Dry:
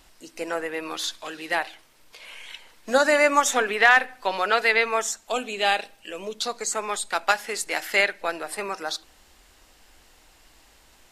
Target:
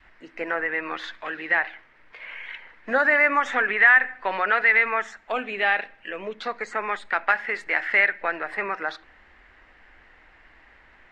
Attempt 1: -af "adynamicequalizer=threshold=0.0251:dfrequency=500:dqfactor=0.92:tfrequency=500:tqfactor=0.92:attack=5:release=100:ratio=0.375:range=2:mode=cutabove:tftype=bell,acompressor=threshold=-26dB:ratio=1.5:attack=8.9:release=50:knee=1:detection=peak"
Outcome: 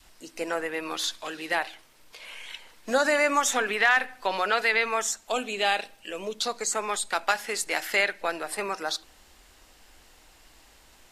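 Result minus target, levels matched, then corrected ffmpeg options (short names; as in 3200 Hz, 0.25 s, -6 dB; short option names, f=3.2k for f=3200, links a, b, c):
2000 Hz band -2.5 dB
-af "adynamicequalizer=threshold=0.0251:dfrequency=500:dqfactor=0.92:tfrequency=500:tqfactor=0.92:attack=5:release=100:ratio=0.375:range=2:mode=cutabove:tftype=bell,lowpass=f=1.9k:t=q:w=3.6,acompressor=threshold=-26dB:ratio=1.5:attack=8.9:release=50:knee=1:detection=peak"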